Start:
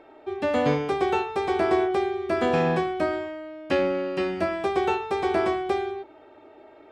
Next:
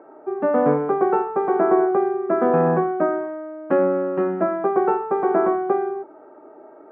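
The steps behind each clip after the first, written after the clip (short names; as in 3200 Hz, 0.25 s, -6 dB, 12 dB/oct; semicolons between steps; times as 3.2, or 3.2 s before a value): Chebyshev band-pass 170–1400 Hz, order 3; gain +5.5 dB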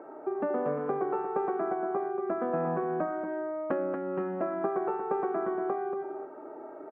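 compressor 6:1, threshold -29 dBFS, peak gain reduction 15.5 dB; echo 0.233 s -6.5 dB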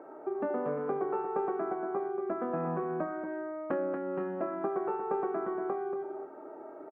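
doubler 25 ms -10.5 dB; gain -2.5 dB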